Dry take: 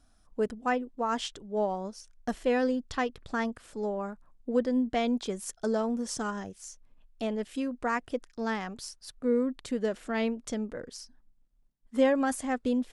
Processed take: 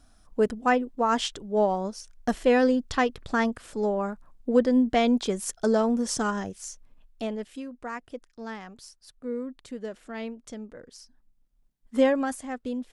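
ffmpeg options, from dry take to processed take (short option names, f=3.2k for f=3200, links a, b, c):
-af "volume=15.5dB,afade=t=out:st=6.66:d=0.98:silence=0.251189,afade=t=in:st=10.84:d=1.14:silence=0.334965,afade=t=out:st=11.98:d=0.43:silence=0.421697"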